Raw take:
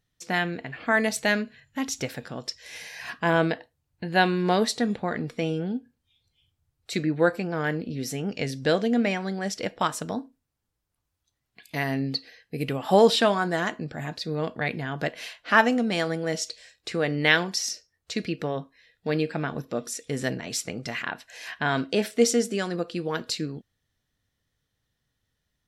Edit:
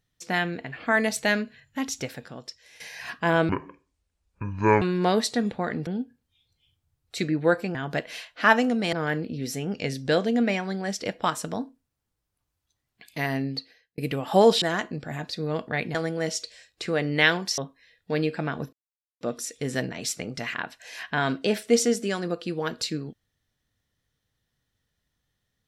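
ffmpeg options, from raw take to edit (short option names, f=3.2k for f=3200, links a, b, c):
-filter_complex "[0:a]asplit=12[a][b][c][d][e][f][g][h][i][j][k][l];[a]atrim=end=2.8,asetpts=PTS-STARTPTS,afade=t=out:st=1.79:d=1.01:silence=0.223872[m];[b]atrim=start=2.8:end=3.494,asetpts=PTS-STARTPTS,afade=t=in:d=0.004:c=hsin:silence=0.223872[n];[c]atrim=start=3.49:end=4.26,asetpts=PTS-STARTPTS,asetrate=25578,aresample=44100[o];[d]atrim=start=4.256:end=5.312[p];[e]atrim=start=5.618:end=7.502[q];[f]atrim=start=14.828:end=16.012[r];[g]atrim=start=7.498:end=12.55,asetpts=PTS-STARTPTS,afade=t=out:st=4.432:d=0.62[s];[h]atrim=start=12.55:end=13.192,asetpts=PTS-STARTPTS,afade=t=in:d=0.004:c=hsin[t];[i]atrim=start=13.498:end=14.832[u];[j]atrim=start=16.008:end=17.642[v];[k]atrim=start=18.538:end=19.69,asetpts=PTS-STARTPTS,afade=t=out:st=1.148:d=0.004:c=hsin,apad=pad_dur=0.48[w];[l]atrim=start=19.69,asetpts=PTS-STARTPTS,afade=t=in:d=0.004:c=hsin[x];[m][n]concat=n=2:v=0:a=1[y];[y][o]acrossfade=d=0.004:c1=hsin:c2=hsin[z];[z][p]acrossfade=d=0.004:c1=hsin:c2=hsin[aa];[aa][q]acrossfade=d=0.004:c1=hsin:c2=hsin[ab];[ab][r]acrossfade=d=0.004:c1=hsin:c2=hsin[ac];[s][t]concat=n=2:v=0:a=1[ad];[ac][ad]acrossfade=d=0.004:c1=hsin:c2=hsin[ae];[ae][u]acrossfade=d=0.004:c1=hsin:c2=hsin[af];[af][v]acrossfade=d=0.004:c1=hsin:c2=hsin[ag];[w][x]concat=n=2:v=0:a=1[ah];[ag][ah]acrossfade=d=0.004:c1=hsin:c2=hsin"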